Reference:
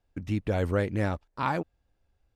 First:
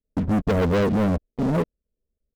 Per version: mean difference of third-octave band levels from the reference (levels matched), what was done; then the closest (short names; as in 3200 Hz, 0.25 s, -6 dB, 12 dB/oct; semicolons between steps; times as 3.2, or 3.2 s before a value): 6.0 dB: CVSD 16 kbps; steep low-pass 610 Hz 96 dB/oct; comb 4.5 ms, depth 54%; sample leveller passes 5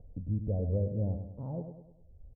12.0 dB: upward compressor, threshold -32 dBFS; steep low-pass 560 Hz 36 dB/oct; bell 340 Hz -14.5 dB 0.92 oct; on a send: feedback echo 0.101 s, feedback 46%, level -8 dB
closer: first